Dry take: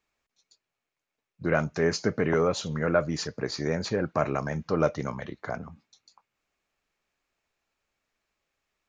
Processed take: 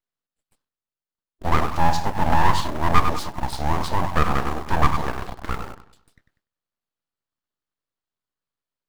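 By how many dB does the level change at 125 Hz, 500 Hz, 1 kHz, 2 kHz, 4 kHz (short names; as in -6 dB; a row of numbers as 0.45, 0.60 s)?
+6.0, -4.0, +13.5, +4.0, +4.5 dB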